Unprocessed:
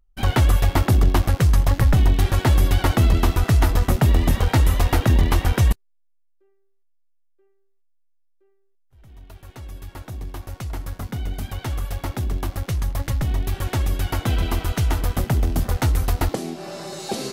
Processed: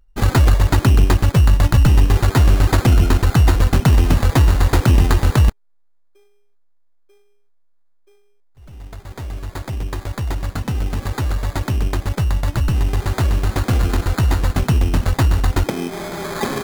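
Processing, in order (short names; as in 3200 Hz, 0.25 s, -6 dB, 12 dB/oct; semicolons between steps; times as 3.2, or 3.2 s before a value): dynamic EQ 640 Hz, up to -5 dB, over -39 dBFS, Q 1.6; in parallel at -1 dB: compressor, threshold -28 dBFS, peak gain reduction 15.5 dB; on the sum: sample-rate reducer 2700 Hz, jitter 0%; speed mistake 24 fps film run at 25 fps; gain +2.5 dB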